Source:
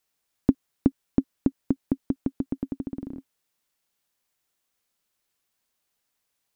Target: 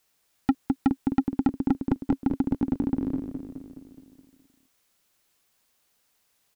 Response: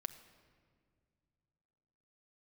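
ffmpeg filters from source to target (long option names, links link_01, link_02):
-af "aecho=1:1:210|420|630|840|1050|1260|1470:0.355|0.202|0.115|0.0657|0.0375|0.0213|0.0122,asoftclip=type=tanh:threshold=-22dB,volume=7.5dB"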